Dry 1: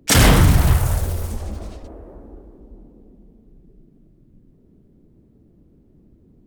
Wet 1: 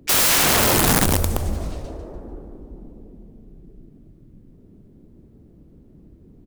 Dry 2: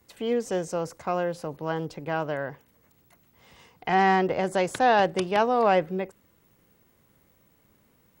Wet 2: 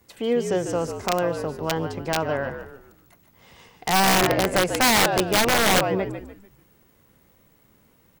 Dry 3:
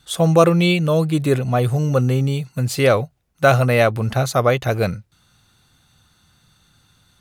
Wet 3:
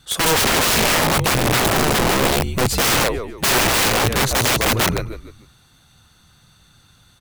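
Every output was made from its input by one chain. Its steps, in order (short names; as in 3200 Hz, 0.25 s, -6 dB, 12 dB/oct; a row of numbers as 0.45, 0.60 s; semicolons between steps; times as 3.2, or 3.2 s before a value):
frequency-shifting echo 0.147 s, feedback 36%, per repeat -60 Hz, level -8 dB; wrapped overs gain 15.5 dB; normalise peaks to -12 dBFS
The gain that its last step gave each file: +3.5, +3.5, +3.5 dB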